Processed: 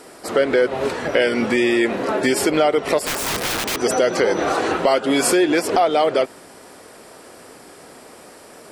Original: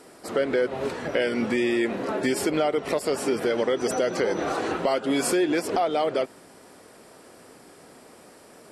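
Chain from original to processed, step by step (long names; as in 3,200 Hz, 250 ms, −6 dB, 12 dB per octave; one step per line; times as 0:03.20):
parametric band 170 Hz −4 dB 2.1 octaves
0:03.05–0:03.80: wrap-around overflow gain 25.5 dB
level +8 dB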